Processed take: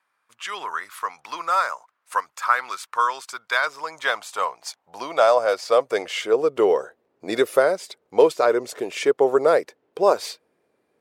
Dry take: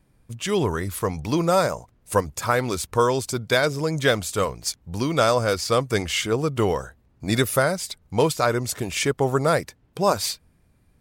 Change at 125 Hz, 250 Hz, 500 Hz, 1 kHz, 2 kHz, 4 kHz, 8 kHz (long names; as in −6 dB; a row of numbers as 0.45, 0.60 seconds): below −20 dB, −6.5 dB, +2.5 dB, +2.5 dB, +1.0 dB, −4.5 dB, −8.5 dB